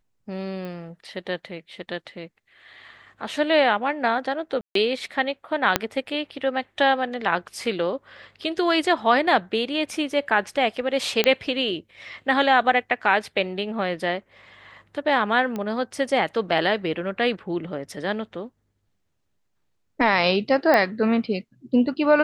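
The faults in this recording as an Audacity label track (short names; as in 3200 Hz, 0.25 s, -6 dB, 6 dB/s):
0.650000	0.650000	pop -24 dBFS
4.610000	4.750000	gap 0.143 s
5.760000	5.760000	pop -2 dBFS
11.240000	11.240000	pop -5 dBFS
15.560000	15.560000	pop -17 dBFS
20.740000	20.740000	pop -8 dBFS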